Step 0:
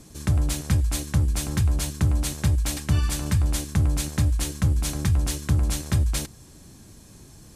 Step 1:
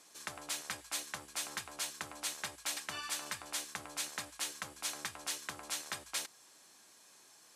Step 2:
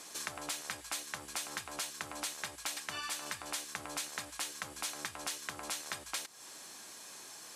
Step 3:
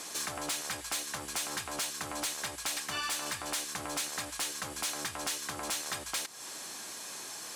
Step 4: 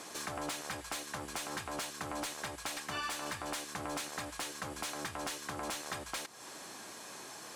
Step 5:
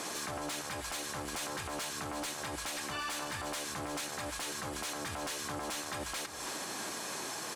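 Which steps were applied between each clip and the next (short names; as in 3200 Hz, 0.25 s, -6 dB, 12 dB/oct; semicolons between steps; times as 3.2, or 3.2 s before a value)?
HPF 850 Hz 12 dB/oct; high shelf 7100 Hz -6.5 dB; gain -4 dB
compressor 6:1, threshold -48 dBFS, peak gain reduction 14 dB; gain +11 dB
soft clip -35 dBFS, distortion -10 dB; gain +7.5 dB
high shelf 2300 Hz -9.5 dB; gain +1 dB
limiter -39.5 dBFS, peak gain reduction 11.5 dB; echo 0.33 s -12.5 dB; gain +9 dB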